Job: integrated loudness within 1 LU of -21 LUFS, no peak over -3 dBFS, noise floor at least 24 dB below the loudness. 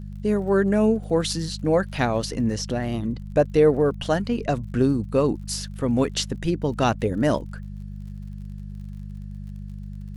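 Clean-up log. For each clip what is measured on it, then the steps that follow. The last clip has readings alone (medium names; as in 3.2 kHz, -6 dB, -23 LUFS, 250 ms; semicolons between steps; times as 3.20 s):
tick rate 50 per s; hum 50 Hz; highest harmonic 200 Hz; hum level -32 dBFS; loudness -23.0 LUFS; peak level -7.0 dBFS; loudness target -21.0 LUFS
-> de-click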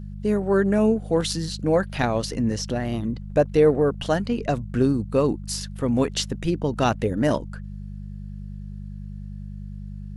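tick rate 0.20 per s; hum 50 Hz; highest harmonic 200 Hz; hum level -32 dBFS
-> de-hum 50 Hz, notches 4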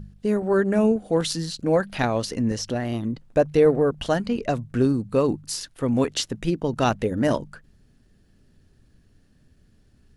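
hum not found; loudness -23.5 LUFS; peak level -7.5 dBFS; loudness target -21.0 LUFS
-> trim +2.5 dB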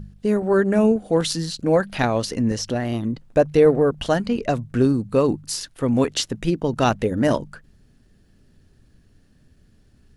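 loudness -21.0 LUFS; peak level -5.5 dBFS; noise floor -57 dBFS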